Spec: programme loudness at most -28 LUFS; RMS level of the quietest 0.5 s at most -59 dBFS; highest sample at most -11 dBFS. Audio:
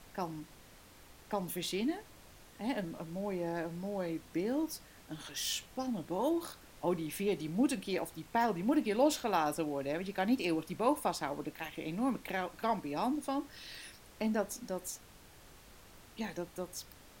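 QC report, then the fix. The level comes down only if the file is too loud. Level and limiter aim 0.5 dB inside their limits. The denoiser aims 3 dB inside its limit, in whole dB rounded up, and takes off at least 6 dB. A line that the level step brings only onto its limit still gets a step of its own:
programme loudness -36.0 LUFS: pass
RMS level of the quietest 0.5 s -57 dBFS: fail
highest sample -16.5 dBFS: pass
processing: noise reduction 6 dB, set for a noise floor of -57 dBFS

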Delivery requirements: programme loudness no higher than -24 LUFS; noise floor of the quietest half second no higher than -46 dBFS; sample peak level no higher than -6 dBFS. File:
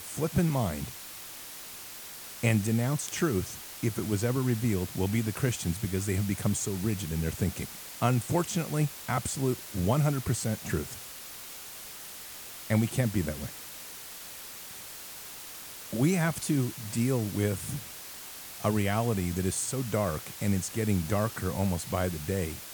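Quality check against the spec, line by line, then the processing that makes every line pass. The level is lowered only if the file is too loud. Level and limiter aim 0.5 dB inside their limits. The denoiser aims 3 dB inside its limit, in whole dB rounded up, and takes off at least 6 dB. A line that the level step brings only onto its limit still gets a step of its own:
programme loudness -31.0 LUFS: pass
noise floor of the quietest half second -44 dBFS: fail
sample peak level -10.5 dBFS: pass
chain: noise reduction 6 dB, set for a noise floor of -44 dBFS

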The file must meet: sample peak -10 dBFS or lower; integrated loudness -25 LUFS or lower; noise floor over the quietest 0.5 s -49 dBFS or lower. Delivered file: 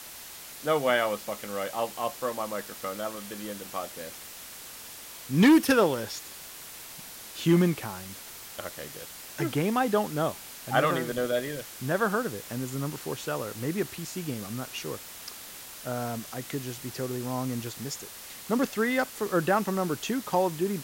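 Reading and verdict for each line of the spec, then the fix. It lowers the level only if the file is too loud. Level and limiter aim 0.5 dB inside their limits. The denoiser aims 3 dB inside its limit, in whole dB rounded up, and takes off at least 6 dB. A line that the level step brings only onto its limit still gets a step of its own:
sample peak -12.0 dBFS: pass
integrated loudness -29.0 LUFS: pass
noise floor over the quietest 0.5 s -44 dBFS: fail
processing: noise reduction 8 dB, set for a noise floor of -44 dBFS

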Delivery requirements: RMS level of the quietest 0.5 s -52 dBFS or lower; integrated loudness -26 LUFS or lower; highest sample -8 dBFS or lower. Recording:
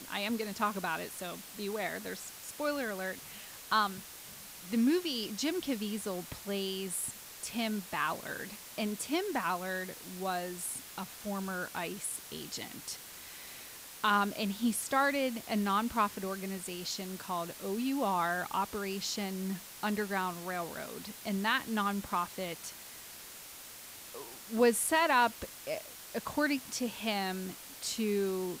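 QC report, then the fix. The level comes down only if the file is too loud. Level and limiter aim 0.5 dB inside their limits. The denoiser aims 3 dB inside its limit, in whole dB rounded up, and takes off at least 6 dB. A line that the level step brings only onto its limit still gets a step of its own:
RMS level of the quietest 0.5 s -49 dBFS: fail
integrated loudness -34.0 LUFS: pass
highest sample -16.0 dBFS: pass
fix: noise reduction 6 dB, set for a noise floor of -49 dBFS

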